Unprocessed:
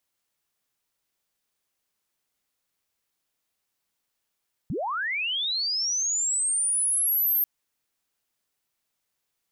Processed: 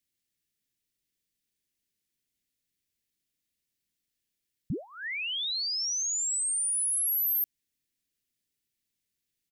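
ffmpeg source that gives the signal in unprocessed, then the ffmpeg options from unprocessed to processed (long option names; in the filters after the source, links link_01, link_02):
-f lavfi -i "aevalsrc='pow(10,(-26.5+6.5*t/2.74)/20)*sin(2*PI*(110*t+12890*t*t/(2*2.74)))':duration=2.74:sample_rate=44100"
-af "firequalizer=gain_entry='entry(270,0);entry(930,-27);entry(1800,-6);entry(3600,-4)':delay=0.05:min_phase=1"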